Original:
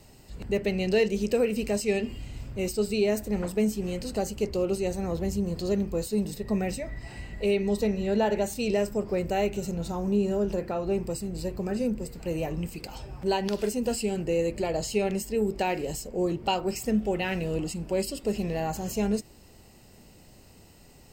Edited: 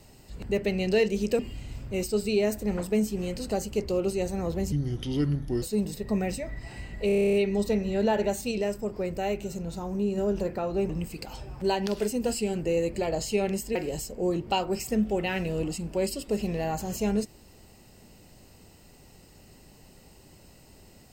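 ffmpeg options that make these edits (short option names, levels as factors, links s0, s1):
-filter_complex "[0:a]asplit=17[s0][s1][s2][s3][s4][s5][s6][s7][s8][s9][s10][s11][s12][s13][s14][s15][s16];[s0]atrim=end=1.392[s17];[s1]atrim=start=2.038:end=5.374[s18];[s2]atrim=start=5.37:end=6.02,asetpts=PTS-STARTPTS,asetrate=31752,aresample=44100,atrim=end_sample=39812,asetpts=PTS-STARTPTS[s19];[s3]atrim=start=6.016:end=7.492[s20];[s4]atrim=start=7.458:end=7.492[s21];[s5]atrim=start=7.458:end=7.492[s22];[s6]atrim=start=7.458:end=7.492[s23];[s7]atrim=start=7.458:end=7.492[s24];[s8]atrim=start=7.458:end=7.492[s25];[s9]atrim=start=7.458:end=7.492[s26];[s10]atrim=start=7.458:end=7.492[s27];[s11]atrim=start=7.458:end=7.492[s28];[s12]atrim=start=7.458:end=8.642[s29];[s13]atrim=start=8.638:end=10.302,asetpts=PTS-STARTPTS,volume=0.708[s30];[s14]atrim=start=10.298:end=11.022[s31];[s15]atrim=start=12.508:end=15.372[s32];[s16]atrim=start=15.708[s33];[s17][s18]acrossfade=d=0.004:c1=hsin:c2=hsin[s34];[s34][s19]acrossfade=d=0.004:c1=hsin:c2=hsin[s35];[s35][s20]acrossfade=d=0.004:c1=hsin:c2=hsin[s36];[s36][s21]acrossfade=d=0.004:c1=hsin:c2=hsin[s37];[s37][s22]acrossfade=d=0.004:c1=hsin:c2=hsin[s38];[s38][s23]acrossfade=d=0.004:c1=hsin:c2=hsin[s39];[s39][s24]acrossfade=d=0.004:c1=hsin:c2=hsin[s40];[s40][s25]acrossfade=d=0.004:c1=hsin:c2=hsin[s41];[s41][s26]acrossfade=d=0.004:c1=hsin:c2=hsin[s42];[s42][s27]acrossfade=d=0.004:c1=hsin:c2=hsin[s43];[s43][s28]acrossfade=d=0.004:c1=hsin:c2=hsin[s44];[s44][s29]acrossfade=d=0.004:c1=hsin:c2=hsin[s45];[s45][s30]acrossfade=d=0.004:c1=hsin:c2=hsin[s46];[s46][s31]acrossfade=d=0.004:c1=hsin:c2=hsin[s47];[s47][s32]acrossfade=d=0.004:c1=hsin:c2=hsin[s48];[s48][s33]acrossfade=d=0.004:c1=hsin:c2=hsin"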